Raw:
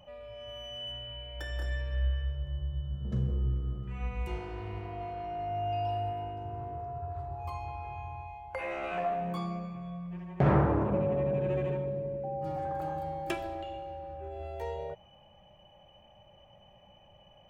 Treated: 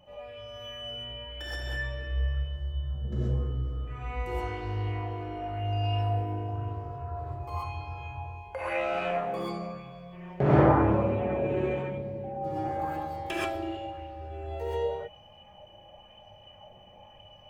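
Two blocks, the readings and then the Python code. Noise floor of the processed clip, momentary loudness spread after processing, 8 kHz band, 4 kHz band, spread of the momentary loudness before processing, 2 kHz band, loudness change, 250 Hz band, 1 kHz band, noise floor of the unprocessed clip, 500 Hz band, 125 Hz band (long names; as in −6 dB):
−53 dBFS, 12 LU, can't be measured, +3.0 dB, 12 LU, +5.5 dB, +3.0 dB, +4.0 dB, +3.0 dB, −59 dBFS, +3.0 dB, +3.0 dB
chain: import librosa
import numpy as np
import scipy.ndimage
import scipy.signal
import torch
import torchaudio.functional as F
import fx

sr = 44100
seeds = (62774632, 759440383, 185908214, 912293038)

y = fx.rev_gated(x, sr, seeds[0], gate_ms=150, shape='rising', drr_db=-7.0)
y = fx.bell_lfo(y, sr, hz=0.95, low_hz=330.0, high_hz=5100.0, db=6)
y = y * librosa.db_to_amplitude(-3.5)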